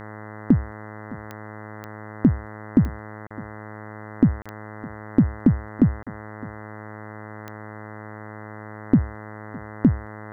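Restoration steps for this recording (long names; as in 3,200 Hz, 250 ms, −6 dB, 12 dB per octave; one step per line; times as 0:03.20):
click removal
hum removal 106.6 Hz, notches 19
repair the gap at 0:03.27/0:04.42/0:06.03, 36 ms
echo removal 610 ms −21 dB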